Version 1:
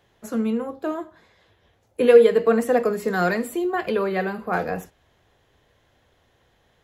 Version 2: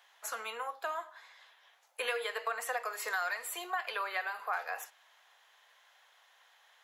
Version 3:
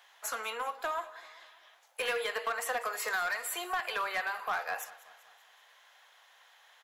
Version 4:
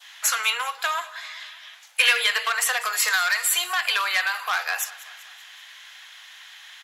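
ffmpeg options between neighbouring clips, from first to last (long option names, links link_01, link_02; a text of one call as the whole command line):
ffmpeg -i in.wav -af "highpass=frequency=840:width=0.5412,highpass=frequency=840:width=1.3066,acompressor=threshold=-36dB:ratio=4,volume=3dB" out.wav
ffmpeg -i in.wav -filter_complex "[0:a]asplit=2[link_01][link_02];[link_02]aeval=exprs='0.0237*(abs(mod(val(0)/0.0237+3,4)-2)-1)':channel_layout=same,volume=-6dB[link_03];[link_01][link_03]amix=inputs=2:normalize=0,aecho=1:1:193|386|579|772:0.112|0.0595|0.0315|0.0167" out.wav
ffmpeg -i in.wav -af "bandpass=frequency=2200:width_type=q:width=0.92:csg=0,adynamicequalizer=threshold=0.00282:dfrequency=2100:dqfactor=1.2:tfrequency=2100:tqfactor=1.2:attack=5:release=100:ratio=0.375:range=2.5:mode=cutabove:tftype=bell,crystalizer=i=8:c=0,volume=8.5dB" out.wav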